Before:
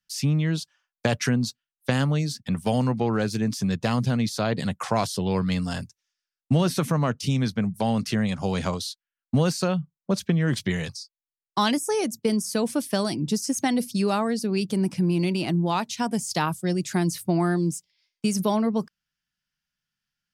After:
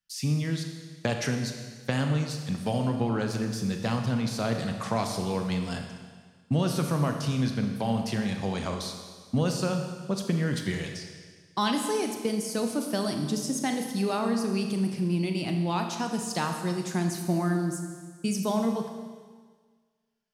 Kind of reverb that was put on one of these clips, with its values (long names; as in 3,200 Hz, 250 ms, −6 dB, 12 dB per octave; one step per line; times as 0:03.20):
four-comb reverb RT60 1.6 s, combs from 27 ms, DRR 4 dB
level −5 dB